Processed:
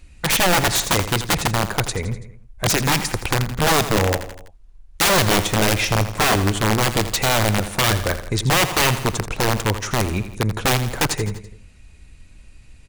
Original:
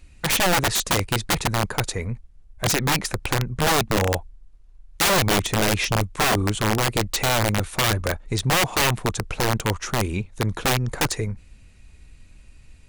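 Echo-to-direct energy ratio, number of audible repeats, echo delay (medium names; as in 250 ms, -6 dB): -10.5 dB, 4, 83 ms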